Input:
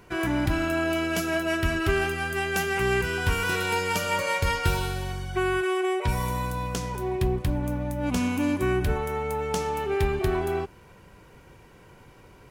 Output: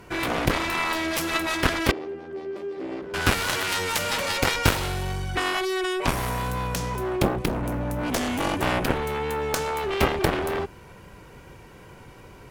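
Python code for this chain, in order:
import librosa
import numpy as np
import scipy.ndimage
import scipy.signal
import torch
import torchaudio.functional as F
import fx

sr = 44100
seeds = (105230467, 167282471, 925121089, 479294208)

y = fx.wow_flutter(x, sr, seeds[0], rate_hz=2.1, depth_cents=21.0)
y = fx.cheby_harmonics(y, sr, harmonics=(7,), levels_db=(-10,), full_scale_db=-9.5)
y = fx.bandpass_q(y, sr, hz=350.0, q=2.4, at=(1.91, 3.14))
y = F.gain(torch.from_numpy(y), 3.5).numpy()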